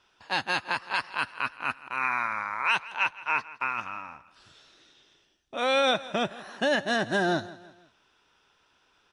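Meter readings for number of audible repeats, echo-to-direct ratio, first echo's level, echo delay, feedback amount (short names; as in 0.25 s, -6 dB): 3, -17.5 dB, -18.5 dB, 0.165 s, 43%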